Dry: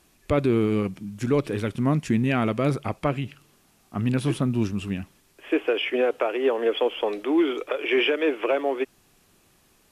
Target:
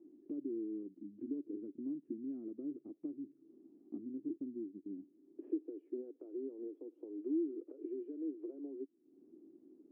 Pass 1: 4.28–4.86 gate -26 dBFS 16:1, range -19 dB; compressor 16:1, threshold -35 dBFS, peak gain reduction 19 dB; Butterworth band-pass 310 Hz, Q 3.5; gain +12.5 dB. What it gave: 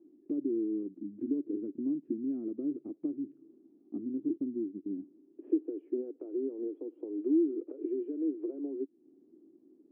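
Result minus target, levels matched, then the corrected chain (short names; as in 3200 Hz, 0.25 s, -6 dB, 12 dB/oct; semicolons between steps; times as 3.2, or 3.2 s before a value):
compressor: peak gain reduction -8.5 dB
4.28–4.86 gate -26 dBFS 16:1, range -19 dB; compressor 16:1, threshold -44 dBFS, peak gain reduction 27.5 dB; Butterworth band-pass 310 Hz, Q 3.5; gain +12.5 dB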